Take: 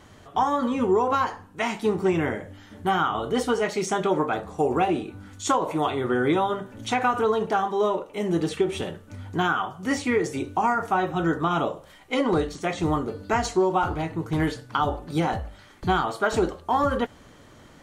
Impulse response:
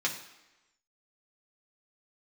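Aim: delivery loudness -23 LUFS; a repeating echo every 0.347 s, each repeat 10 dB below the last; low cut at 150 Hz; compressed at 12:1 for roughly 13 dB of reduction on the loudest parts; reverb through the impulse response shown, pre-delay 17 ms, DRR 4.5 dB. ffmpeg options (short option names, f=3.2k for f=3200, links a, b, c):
-filter_complex "[0:a]highpass=150,acompressor=threshold=-31dB:ratio=12,aecho=1:1:347|694|1041|1388:0.316|0.101|0.0324|0.0104,asplit=2[a][b];[1:a]atrim=start_sample=2205,adelay=17[c];[b][c]afir=irnorm=-1:irlink=0,volume=-11.5dB[d];[a][d]amix=inputs=2:normalize=0,volume=11.5dB"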